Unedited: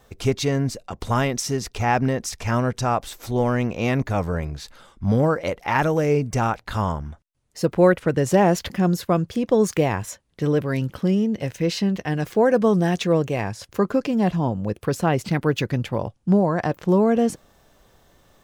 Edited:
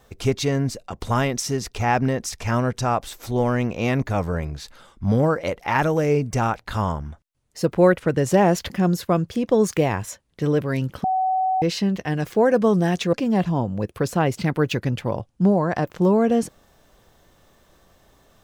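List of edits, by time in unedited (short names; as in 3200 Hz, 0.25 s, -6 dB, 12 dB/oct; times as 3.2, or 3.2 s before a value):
11.04–11.62 bleep 753 Hz -18 dBFS
13.13–14 cut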